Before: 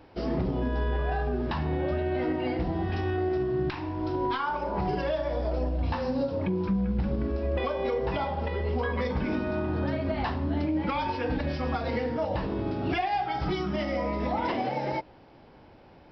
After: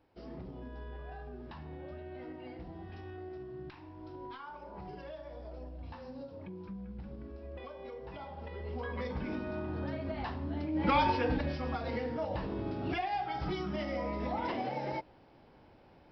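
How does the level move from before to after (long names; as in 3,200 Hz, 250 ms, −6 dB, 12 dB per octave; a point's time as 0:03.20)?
0:08.06 −17 dB
0:09.01 −8.5 dB
0:10.69 −8.5 dB
0:10.94 +3.5 dB
0:11.60 −6.5 dB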